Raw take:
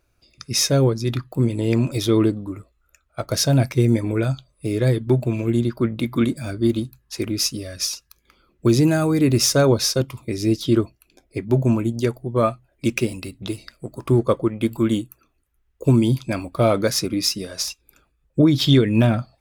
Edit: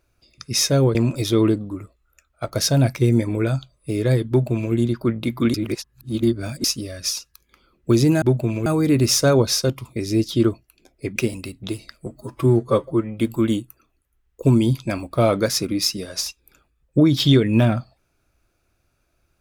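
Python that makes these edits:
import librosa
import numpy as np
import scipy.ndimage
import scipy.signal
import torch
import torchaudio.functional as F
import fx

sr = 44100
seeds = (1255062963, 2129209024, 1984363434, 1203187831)

y = fx.edit(x, sr, fx.cut(start_s=0.95, length_s=0.76),
    fx.duplicate(start_s=5.05, length_s=0.44, to_s=8.98),
    fx.reverse_span(start_s=6.3, length_s=1.1),
    fx.cut(start_s=11.48, length_s=1.47),
    fx.stretch_span(start_s=13.85, length_s=0.75, factor=1.5), tone=tone)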